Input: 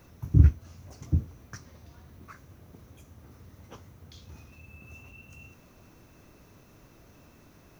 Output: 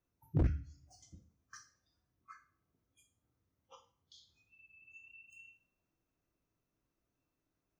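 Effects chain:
noise reduction from a noise print of the clip's start 25 dB
coupled-rooms reverb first 0.43 s, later 1.6 s, from −28 dB, DRR 3.5 dB
wave folding −15 dBFS
level −7 dB

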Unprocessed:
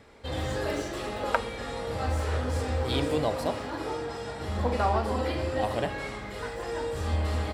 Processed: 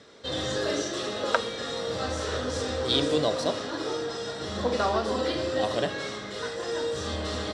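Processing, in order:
loudspeaker in its box 160–8,800 Hz, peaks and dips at 240 Hz −3 dB, 850 Hz −9 dB, 2,300 Hz −7 dB, 3,700 Hz +8 dB, 5,800 Hz +8 dB
level +3.5 dB

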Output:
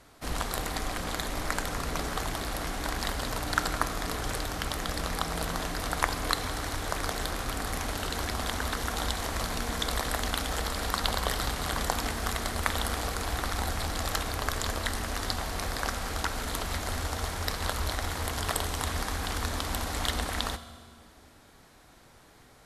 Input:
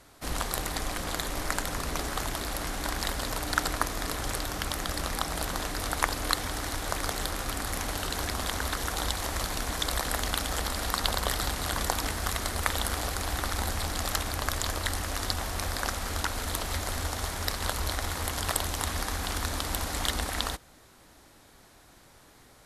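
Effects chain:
parametric band 13,000 Hz −4 dB 1.9 octaves
convolution reverb RT60 1.8 s, pre-delay 3 ms, DRR 10.5 dB

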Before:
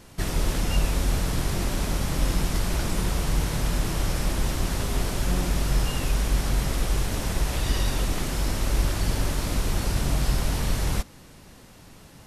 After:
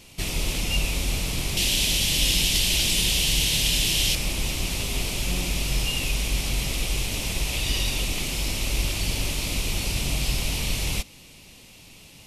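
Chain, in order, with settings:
high shelf with overshoot 2,000 Hz +6.5 dB, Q 3, from 0:01.57 +13.5 dB, from 0:04.15 +7 dB
level −3 dB

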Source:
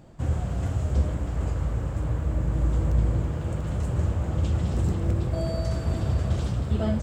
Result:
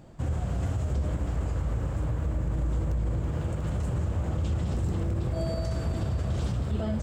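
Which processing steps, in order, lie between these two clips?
brickwall limiter −21 dBFS, peak gain reduction 10 dB

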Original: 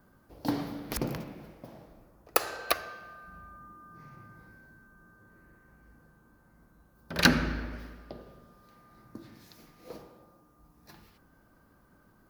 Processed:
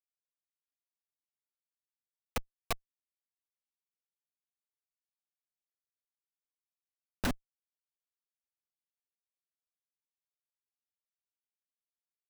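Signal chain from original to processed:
parametric band 160 Hz −3.5 dB 0.23 octaves
output level in coarse steps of 24 dB
comparator with hysteresis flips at −27.5 dBFS
level +14 dB

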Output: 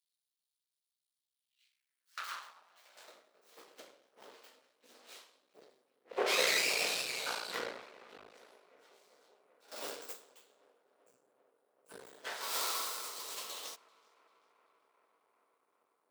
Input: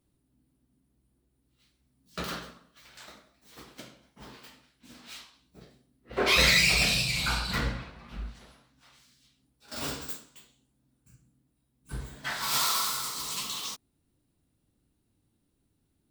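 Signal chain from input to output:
tape delay 389 ms, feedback 87%, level −22.5 dB, low-pass 2,100 Hz
half-wave rectification
high-pass filter sweep 3,900 Hz → 470 Hz, 0:01.26–0:03.13
level −4.5 dB

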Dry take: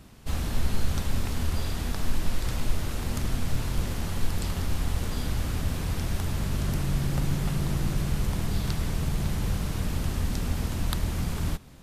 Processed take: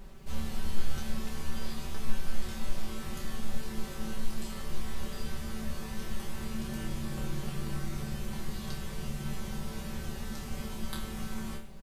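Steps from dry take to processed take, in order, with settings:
resonators tuned to a chord D2 fifth, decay 0.43 s
background noise brown −51 dBFS
comb filter 5.2 ms, depth 77%
level +3.5 dB

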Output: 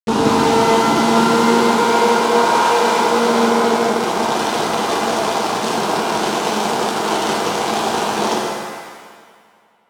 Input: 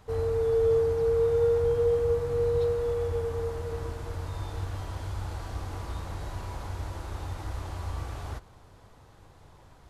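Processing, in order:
lower of the sound and its delayed copy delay 0.33 ms
high-shelf EQ 5,200 Hz −6.5 dB
notch filter 1,100 Hz, Q 5.7
downward compressor 8 to 1, threshold −40 dBFS, peak gain reduction 18 dB
log-companded quantiser 2 bits
phaser with its sweep stopped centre 550 Hz, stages 6
high-pass filter sweep 210 Hz → 510 Hz, 0:00.05–0:02.35
pitch-shifted copies added −12 semitones −7 dB
high-frequency loss of the air 75 metres
on a send: bucket-brigade delay 86 ms, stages 1,024, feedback 82%, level −21.5 dB
on the sum: boost into a limiter +26.5 dB
reverb with rising layers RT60 1.5 s, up +7 semitones, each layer −8 dB, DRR −4 dB
level −9.5 dB

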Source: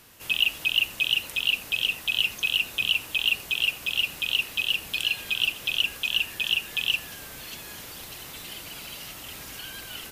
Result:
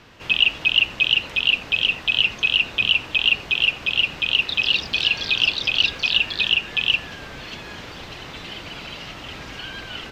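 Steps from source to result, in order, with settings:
0:04.34–0:07.01: delay with pitch and tempo change per echo 145 ms, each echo +5 semitones, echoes 2, each echo −6 dB
high-frequency loss of the air 190 metres
level +9 dB

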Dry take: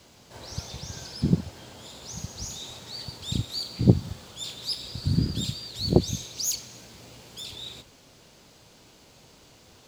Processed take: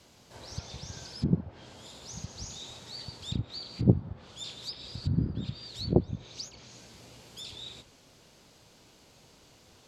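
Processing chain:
treble cut that deepens with the level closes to 1,200 Hz, closed at −22.5 dBFS
level −4 dB

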